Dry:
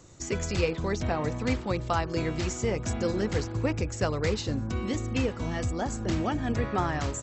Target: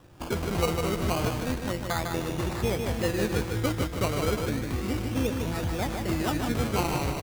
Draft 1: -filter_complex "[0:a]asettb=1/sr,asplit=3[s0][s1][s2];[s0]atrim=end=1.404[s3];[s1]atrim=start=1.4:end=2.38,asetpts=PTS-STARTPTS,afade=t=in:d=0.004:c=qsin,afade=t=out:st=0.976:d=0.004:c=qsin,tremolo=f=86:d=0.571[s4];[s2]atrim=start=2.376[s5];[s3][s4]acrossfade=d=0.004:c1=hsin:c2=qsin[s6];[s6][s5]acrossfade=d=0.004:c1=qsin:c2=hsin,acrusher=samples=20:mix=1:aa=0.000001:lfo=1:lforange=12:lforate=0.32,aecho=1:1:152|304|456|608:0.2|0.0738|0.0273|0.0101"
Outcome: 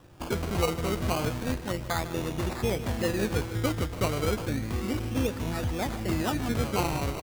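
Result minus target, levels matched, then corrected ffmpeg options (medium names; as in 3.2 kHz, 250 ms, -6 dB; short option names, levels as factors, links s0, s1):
echo-to-direct -9 dB
-filter_complex "[0:a]asettb=1/sr,asplit=3[s0][s1][s2];[s0]atrim=end=1.404[s3];[s1]atrim=start=1.4:end=2.38,asetpts=PTS-STARTPTS,afade=t=in:d=0.004:c=qsin,afade=t=out:st=0.976:d=0.004:c=qsin,tremolo=f=86:d=0.571[s4];[s2]atrim=start=2.376[s5];[s3][s4]acrossfade=d=0.004:c1=hsin:c2=qsin[s6];[s6][s5]acrossfade=d=0.004:c1=qsin:c2=hsin,acrusher=samples=20:mix=1:aa=0.000001:lfo=1:lforange=12:lforate=0.32,aecho=1:1:152|304|456|608|760:0.562|0.208|0.077|0.0285|0.0105"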